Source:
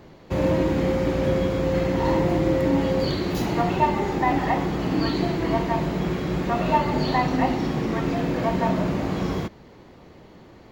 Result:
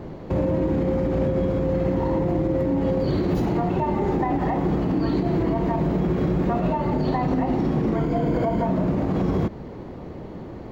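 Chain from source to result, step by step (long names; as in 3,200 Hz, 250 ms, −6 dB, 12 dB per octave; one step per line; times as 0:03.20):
0:07.95–0:08.66: EQ curve with evenly spaced ripples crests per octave 1.8, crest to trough 10 dB
downward compressor, threshold −27 dBFS, peak gain reduction 12 dB
tilt shelving filter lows +7.5 dB, about 1,400 Hz
brickwall limiter −19.5 dBFS, peak gain reduction 7.5 dB
level +5 dB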